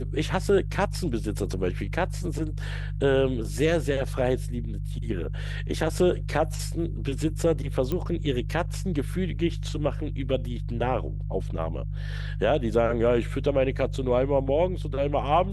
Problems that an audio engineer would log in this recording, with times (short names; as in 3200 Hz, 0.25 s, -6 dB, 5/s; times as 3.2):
hum 50 Hz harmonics 3 -31 dBFS
7.92 pop -16 dBFS